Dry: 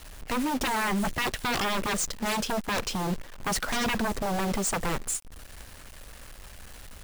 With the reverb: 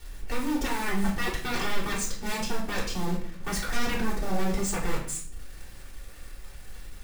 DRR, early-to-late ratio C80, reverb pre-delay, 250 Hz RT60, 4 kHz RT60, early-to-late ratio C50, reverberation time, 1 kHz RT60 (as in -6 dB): -6.0 dB, 10.0 dB, 3 ms, 0.80 s, 0.45 s, 6.5 dB, 0.55 s, 0.50 s